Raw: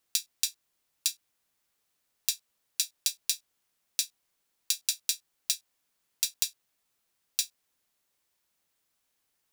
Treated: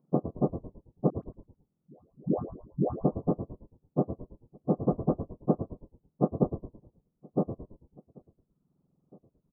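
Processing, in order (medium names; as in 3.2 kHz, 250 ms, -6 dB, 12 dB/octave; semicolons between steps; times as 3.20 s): spectrum inverted on a logarithmic axis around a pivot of 1.7 kHz; Chebyshev band-stop 1.3–9.6 kHz, order 4; echo from a far wall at 300 m, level -26 dB; reverb removal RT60 1.1 s; 1.10–2.97 s: phase dispersion highs, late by 139 ms, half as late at 670 Hz; on a send: frequency-shifting echo 110 ms, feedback 43%, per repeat -64 Hz, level -10.5 dB; 4.78–6.28 s: on the sum: dynamic bell 1.6 kHz, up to +5 dB, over -49 dBFS, Q 1.5; trim -2.5 dB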